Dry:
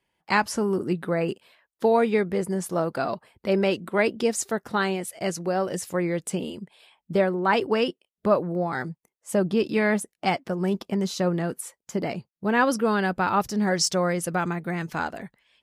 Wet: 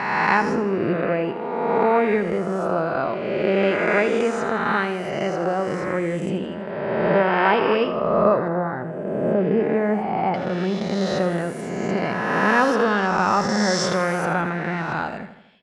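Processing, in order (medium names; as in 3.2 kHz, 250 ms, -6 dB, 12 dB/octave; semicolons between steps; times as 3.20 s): reverse spectral sustain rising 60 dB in 2.01 s; low-pass 2.5 kHz 12 dB/octave, from 8.48 s 1.1 kHz, from 10.34 s 4 kHz; feedback delay 81 ms, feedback 52%, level -11.5 dB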